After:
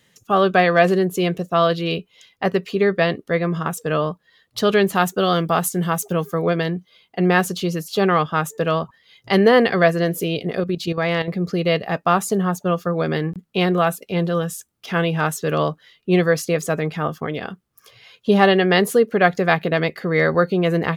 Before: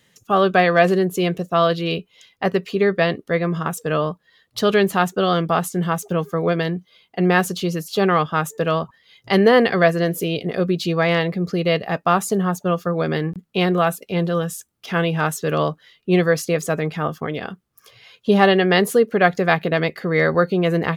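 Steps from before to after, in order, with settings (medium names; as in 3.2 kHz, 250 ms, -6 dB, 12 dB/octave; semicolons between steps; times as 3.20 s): 4.95–6.42 s: treble shelf 7.2 kHz +9.5 dB; 10.60–11.28 s: level held to a coarse grid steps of 10 dB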